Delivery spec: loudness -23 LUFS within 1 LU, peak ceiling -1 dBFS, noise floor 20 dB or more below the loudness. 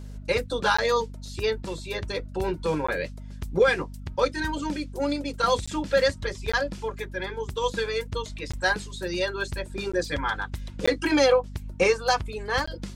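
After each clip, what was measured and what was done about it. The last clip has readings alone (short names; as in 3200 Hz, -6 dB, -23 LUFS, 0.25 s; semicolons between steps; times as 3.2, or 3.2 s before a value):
dropouts 8; longest dropout 15 ms; hum 50 Hz; harmonics up to 250 Hz; hum level -36 dBFS; loudness -26.5 LUFS; peak -10.0 dBFS; loudness target -23.0 LUFS
-> interpolate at 0.77/2.87/5.66/6.52/8.52/9.92/10.86/12.66, 15 ms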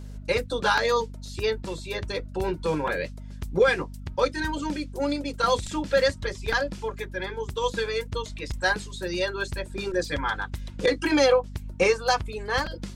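dropouts 0; hum 50 Hz; harmonics up to 250 Hz; hum level -36 dBFS
-> notches 50/100/150/200/250 Hz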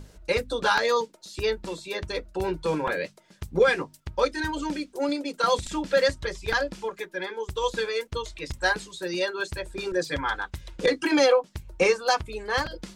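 hum none; loudness -27.0 LUFS; peak -10.5 dBFS; loudness target -23.0 LUFS
-> gain +4 dB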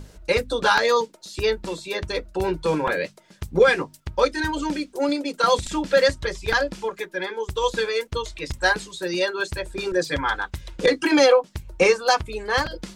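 loudness -23.0 LUFS; peak -6.5 dBFS; noise floor -53 dBFS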